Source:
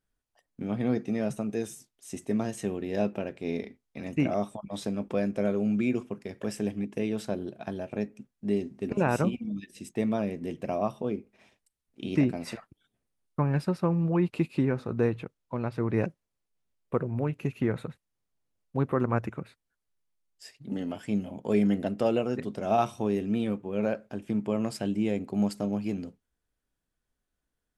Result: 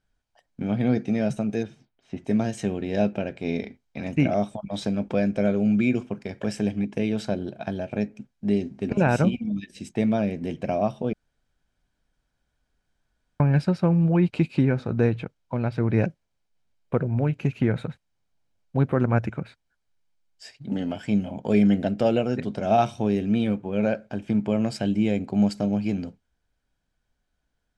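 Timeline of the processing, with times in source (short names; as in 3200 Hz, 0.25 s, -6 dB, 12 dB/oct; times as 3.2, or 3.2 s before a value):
1.63–2.25 air absorption 350 m
11.13–13.4 room tone
whole clip: LPF 6400 Hz 12 dB/oct; comb 1.3 ms, depth 31%; dynamic EQ 1000 Hz, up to -6 dB, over -44 dBFS, Q 1.4; gain +6 dB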